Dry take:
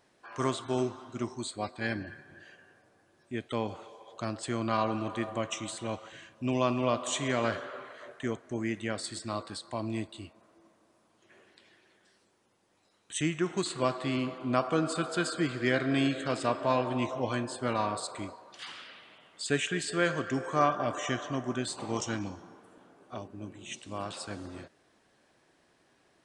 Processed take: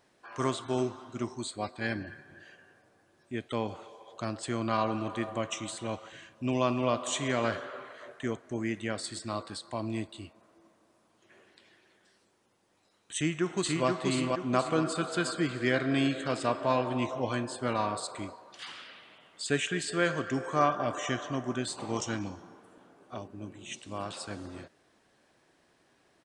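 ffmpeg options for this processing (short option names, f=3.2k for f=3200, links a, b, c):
-filter_complex "[0:a]asplit=2[a][b];[b]afade=t=in:st=13.15:d=0.01,afade=t=out:st=13.87:d=0.01,aecho=0:1:480|960|1440|1920|2400|2880:0.749894|0.337452|0.151854|0.0683341|0.0307503|0.0138377[c];[a][c]amix=inputs=2:normalize=0"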